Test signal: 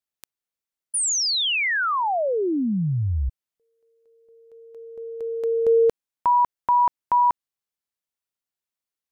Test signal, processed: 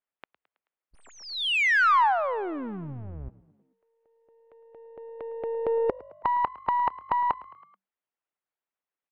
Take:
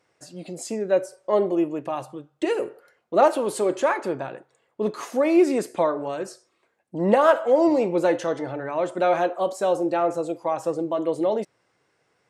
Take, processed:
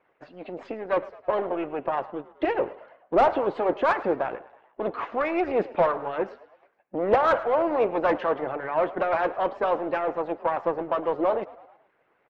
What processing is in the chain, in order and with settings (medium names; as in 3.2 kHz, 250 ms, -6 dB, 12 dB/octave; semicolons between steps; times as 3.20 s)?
partial rectifier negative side -7 dB; low-pass 3.1 kHz 24 dB/octave; harmonic-percussive split harmonic -14 dB; overdrive pedal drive 20 dB, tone 1 kHz, clips at -8 dBFS; frequency-shifting echo 108 ms, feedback 54%, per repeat +48 Hz, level -19.5 dB